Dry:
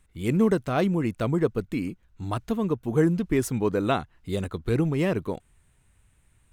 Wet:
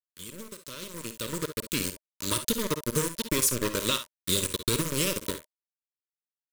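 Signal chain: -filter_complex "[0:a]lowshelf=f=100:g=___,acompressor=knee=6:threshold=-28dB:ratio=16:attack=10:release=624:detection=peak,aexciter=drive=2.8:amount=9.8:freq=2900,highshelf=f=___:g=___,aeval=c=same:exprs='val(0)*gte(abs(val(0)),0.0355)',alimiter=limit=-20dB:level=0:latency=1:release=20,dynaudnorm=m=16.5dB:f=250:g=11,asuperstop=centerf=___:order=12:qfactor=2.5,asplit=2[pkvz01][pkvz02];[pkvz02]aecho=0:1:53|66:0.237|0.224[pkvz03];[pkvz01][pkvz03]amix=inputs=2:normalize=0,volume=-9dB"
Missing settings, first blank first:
-3, 9300, 2.5, 760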